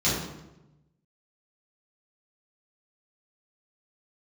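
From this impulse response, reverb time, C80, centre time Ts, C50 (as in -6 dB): 0.95 s, 4.0 dB, 63 ms, 1.0 dB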